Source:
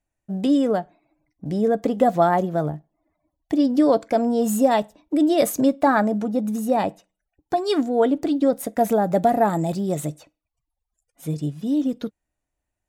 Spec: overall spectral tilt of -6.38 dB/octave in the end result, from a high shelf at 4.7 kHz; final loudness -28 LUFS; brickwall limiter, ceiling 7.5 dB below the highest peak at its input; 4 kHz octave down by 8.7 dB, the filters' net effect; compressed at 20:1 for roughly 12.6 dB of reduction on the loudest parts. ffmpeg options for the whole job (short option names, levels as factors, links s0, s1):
-af "equalizer=f=4000:t=o:g=-7,highshelf=f=4700:g=-9,acompressor=threshold=0.0562:ratio=20,volume=1.58,alimiter=limit=0.119:level=0:latency=1"